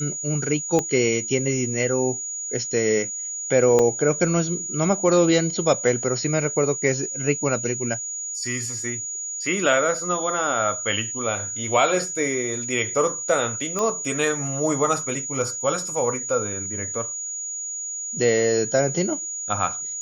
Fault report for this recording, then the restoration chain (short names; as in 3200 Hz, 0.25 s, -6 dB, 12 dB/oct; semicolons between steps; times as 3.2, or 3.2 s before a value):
tone 6800 Hz -28 dBFS
0.79 pop -10 dBFS
3.79 gap 3.9 ms
13.79 pop -12 dBFS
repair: de-click; notch 6800 Hz, Q 30; interpolate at 3.79, 3.9 ms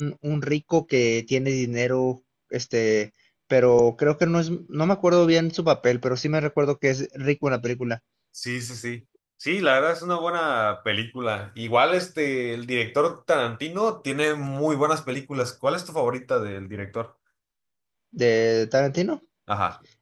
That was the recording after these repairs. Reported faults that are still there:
0.79 pop